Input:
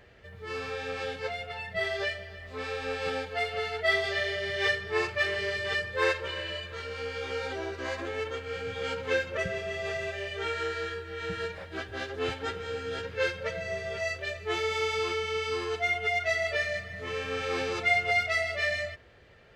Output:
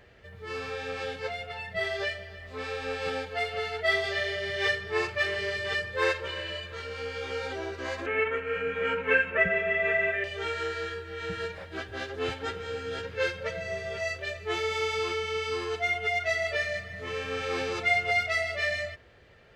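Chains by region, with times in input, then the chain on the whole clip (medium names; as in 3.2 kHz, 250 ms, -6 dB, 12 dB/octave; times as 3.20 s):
8.06–10.24 s: resonant high shelf 3.3 kHz -12.5 dB, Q 3 + comb 4.5 ms, depth 87%
whole clip: none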